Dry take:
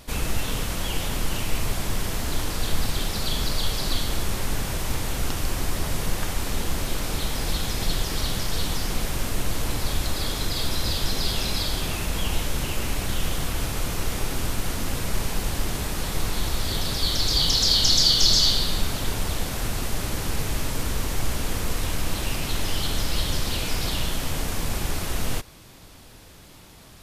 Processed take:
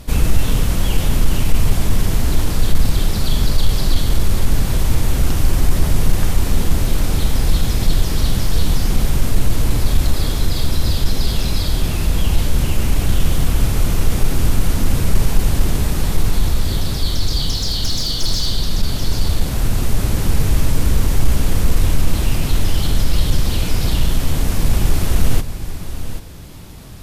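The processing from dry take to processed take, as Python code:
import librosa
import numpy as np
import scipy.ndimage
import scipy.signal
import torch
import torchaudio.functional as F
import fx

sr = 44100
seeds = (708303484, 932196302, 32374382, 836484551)

y = fx.high_shelf(x, sr, hz=11000.0, db=4.0)
y = y + 10.0 ** (-12.5 / 20.0) * np.pad(y, (int(786 * sr / 1000.0), 0))[:len(y)]
y = fx.fold_sine(y, sr, drive_db=6, ceiling_db=-4.5)
y = fx.rider(y, sr, range_db=4, speed_s=2.0)
y = fx.low_shelf(y, sr, hz=310.0, db=11.0)
y = F.gain(torch.from_numpy(y), -9.5).numpy()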